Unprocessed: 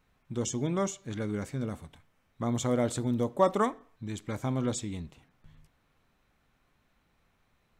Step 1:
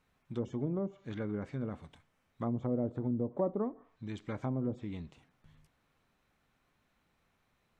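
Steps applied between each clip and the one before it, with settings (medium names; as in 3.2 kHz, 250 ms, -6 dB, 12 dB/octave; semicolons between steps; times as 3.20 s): low-pass that closes with the level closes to 470 Hz, closed at -25 dBFS; bass shelf 64 Hz -7 dB; trim -3 dB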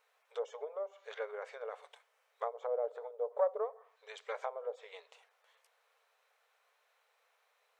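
Chebyshev shaper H 2 -17 dB, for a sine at -20.5 dBFS; brick-wall FIR high-pass 420 Hz; trim +3 dB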